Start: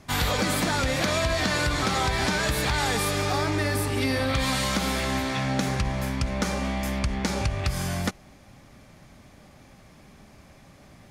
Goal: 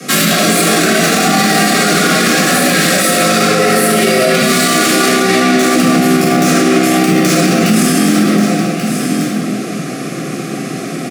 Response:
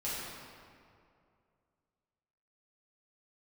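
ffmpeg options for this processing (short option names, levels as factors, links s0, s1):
-filter_complex "[0:a]lowpass=8500,asplit=2[s0][s1];[s1]acompressor=threshold=0.0224:ratio=6,volume=1.06[s2];[s0][s2]amix=inputs=2:normalize=0,asoftclip=type=tanh:threshold=0.0708,acrossover=split=120|6300[s3][s4][s5];[s5]crystalizer=i=2.5:c=0[s6];[s3][s4][s6]amix=inputs=3:normalize=0,afreqshift=120,asuperstop=centerf=920:order=20:qfactor=3.6,aecho=1:1:1135:0.224[s7];[1:a]atrim=start_sample=2205[s8];[s7][s8]afir=irnorm=-1:irlink=0,alimiter=level_in=8.91:limit=0.891:release=50:level=0:latency=1,volume=0.891"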